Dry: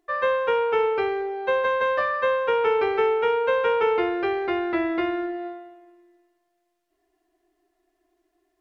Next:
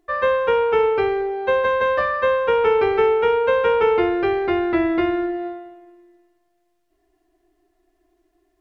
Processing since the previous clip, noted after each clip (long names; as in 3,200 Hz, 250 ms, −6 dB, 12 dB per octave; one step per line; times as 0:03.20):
low-shelf EQ 210 Hz +11.5 dB
level +2.5 dB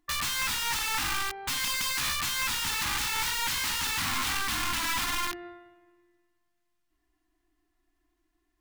wrap-around overflow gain 19.5 dB
flat-topped bell 500 Hz −15 dB 1.2 octaves
level −5 dB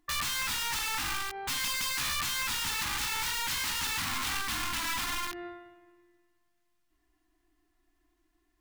brickwall limiter −26 dBFS, peak gain reduction 7 dB
level +2 dB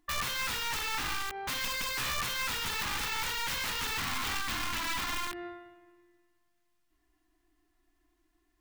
stylus tracing distortion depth 0.16 ms